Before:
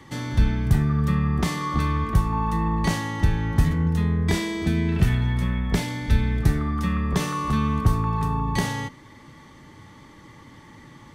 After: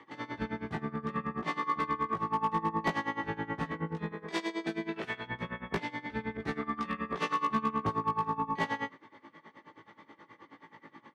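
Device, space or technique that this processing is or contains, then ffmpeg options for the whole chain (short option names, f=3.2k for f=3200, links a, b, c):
helicopter radio: -filter_complex "[0:a]asettb=1/sr,asplit=3[a][b][c];[a]atrim=end=4.124[d];[b]atrim=start=4.12:end=5.26,asetpts=PTS-STARTPTS,afade=t=in:d=0.004:c=qsin,afade=t=out:st=1.136:d=0.004:c=qsin,bass=f=250:g=-11,treble=f=4k:g=9[e];[c]atrim=start=5.256[f];[d][e]acrossfade=d=0.004:c1=hsin:c2=qsin[g];[g][f]acrossfade=d=0.004:c1=qsin:c2=hsin,highpass=330,lowpass=2.5k,aeval=exprs='val(0)*pow(10,-22*(0.5-0.5*cos(2*PI*9.4*n/s))/20)':c=same,asoftclip=type=hard:threshold=-24.5dB,asplit=2[h][i];[i]adelay=18,volume=-3dB[j];[h][j]amix=inputs=2:normalize=0,asettb=1/sr,asplit=3[k][l][m];[k]atrim=end=6.374[n];[l]atrim=start=6.37:end=7.47,asetpts=PTS-STARTPTS,afade=t=in:d=0.004:c=qsin,afade=t=out:st=1.096:d=0.004:c=qsin,adynamicequalizer=threshold=0.00501:dfrequency=1900:dqfactor=0.7:tfrequency=1900:tqfactor=0.7:attack=5:release=100:ratio=0.375:range=2.5:mode=boostabove:tftype=highshelf[o];[m]atrim=start=7.466[p];[n][o]acrossfade=d=0.004:c1=hsin:c2=qsin[q];[q][p]acrossfade=d=0.004:c1=qsin:c2=hsin"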